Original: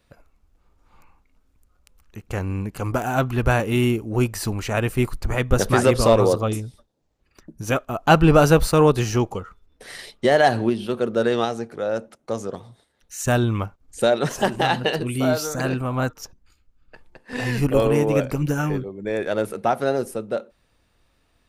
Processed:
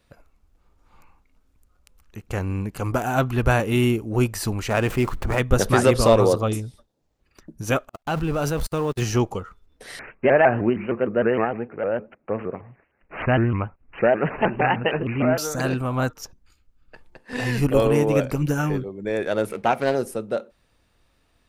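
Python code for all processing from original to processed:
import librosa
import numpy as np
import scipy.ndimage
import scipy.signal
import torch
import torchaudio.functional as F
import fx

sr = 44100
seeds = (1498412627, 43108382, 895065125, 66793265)

y = fx.chain(x, sr, fx.median_filter(points=9),
    fx.low_shelf(hz=110.0, db=-7.0),
    fx.env_flatten(amount_pct=50), at=(4.7, 5.4))
y = fx.chain(y, sr, fx.zero_step(step_db=-27.0),
    fx.level_steps(step_db=22),
    fx.upward_expand(threshold_db=-43.0, expansion=2.5), at=(7.89, 9.02))
y = fx.chain(y, sr, fx.resample_bad(factor=8, down='none', up='filtered'),
    fx.vibrato_shape(shape='saw_up', rate_hz=6.5, depth_cents=160.0), at=(9.99, 15.38))
y = fx.chain(y, sr, fx.peak_eq(hz=2300.0, db=13.0, octaves=0.31),
    fx.backlash(play_db=-46.0),
    fx.doppler_dist(depth_ms=0.2), at=(19.49, 19.95))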